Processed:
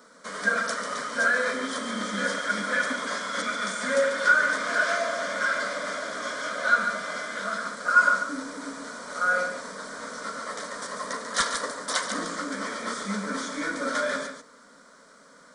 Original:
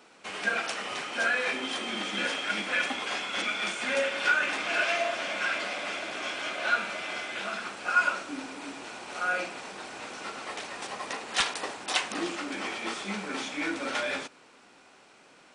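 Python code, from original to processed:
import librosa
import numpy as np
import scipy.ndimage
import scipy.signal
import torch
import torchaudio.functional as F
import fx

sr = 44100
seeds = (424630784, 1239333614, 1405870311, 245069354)

y = fx.fixed_phaser(x, sr, hz=530.0, stages=8)
y = y + 10.0 ** (-8.0 / 20.0) * np.pad(y, (int(142 * sr / 1000.0), 0))[:len(y)]
y = F.gain(torch.from_numpy(y), 6.0).numpy()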